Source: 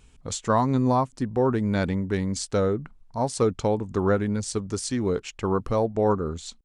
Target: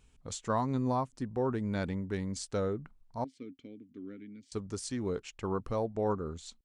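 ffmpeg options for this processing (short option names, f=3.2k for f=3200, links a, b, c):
-filter_complex "[0:a]asettb=1/sr,asplit=3[a][b][c];[a]atrim=end=3.244[d];[b]atrim=start=3.24:end=4.52,asetpts=PTS-STARTPTS,afade=t=in:d=0.004:c=qsin,afade=t=out:st=1.276:d=0.004:c=qsin,asplit=3[e][f][g];[e]bandpass=f=270:t=q:w=8,volume=0dB[h];[f]bandpass=f=2.29k:t=q:w=8,volume=-6dB[i];[g]bandpass=f=3.01k:t=q:w=8,volume=-9dB[j];[h][i][j]amix=inputs=3:normalize=0[k];[c]atrim=start=4.516[l];[d][k]acrossfade=d=0.004:c1=hsin:c2=qsin[m];[m][l]acrossfade=d=0.004:c1=qsin:c2=hsin,volume=-9dB"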